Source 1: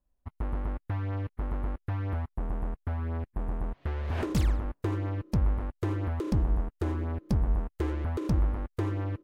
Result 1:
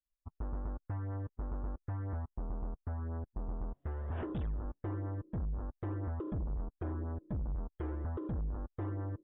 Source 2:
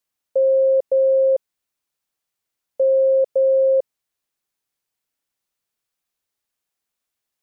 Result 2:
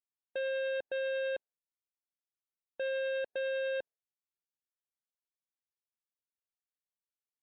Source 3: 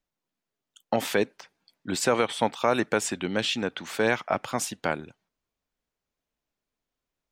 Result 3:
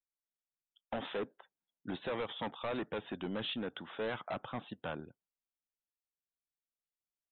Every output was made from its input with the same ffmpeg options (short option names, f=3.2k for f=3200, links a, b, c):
-af "equalizer=f=2.3k:w=2:g=-8,aresample=8000,asoftclip=type=hard:threshold=-26.5dB,aresample=44100,afftdn=nr=17:nf=-51,volume=-6.5dB"